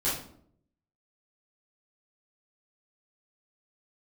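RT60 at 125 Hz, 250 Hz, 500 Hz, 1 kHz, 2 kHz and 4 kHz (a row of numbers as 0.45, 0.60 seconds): 0.95, 0.80, 0.70, 0.55, 0.45, 0.40 seconds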